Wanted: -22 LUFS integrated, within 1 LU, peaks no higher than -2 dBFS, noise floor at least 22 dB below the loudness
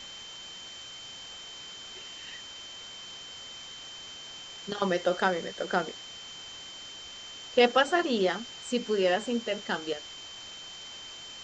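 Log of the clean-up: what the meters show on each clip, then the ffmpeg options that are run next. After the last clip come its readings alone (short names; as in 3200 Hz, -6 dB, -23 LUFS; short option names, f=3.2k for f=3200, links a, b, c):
steady tone 3100 Hz; tone level -43 dBFS; noise floor -45 dBFS; noise floor target -54 dBFS; loudness -32.0 LUFS; peak -10.0 dBFS; loudness target -22.0 LUFS
-> -af "bandreject=f=3.1k:w=30"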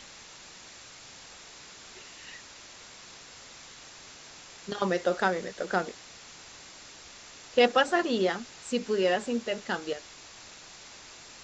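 steady tone none; noise floor -49 dBFS; noise floor target -51 dBFS
-> -af "afftdn=nr=6:nf=-49"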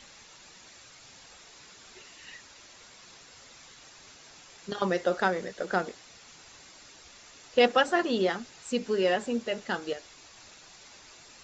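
noise floor -53 dBFS; loudness -28.5 LUFS; peak -10.5 dBFS; loudness target -22.0 LUFS
-> -af "volume=6.5dB"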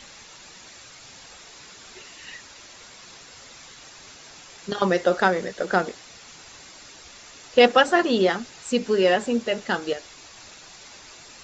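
loudness -22.0 LUFS; peak -4.0 dBFS; noise floor -46 dBFS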